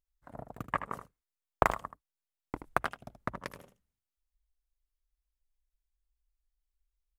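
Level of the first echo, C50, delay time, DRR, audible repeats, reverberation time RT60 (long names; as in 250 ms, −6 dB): −10.5 dB, no reverb audible, 78 ms, no reverb audible, 1, no reverb audible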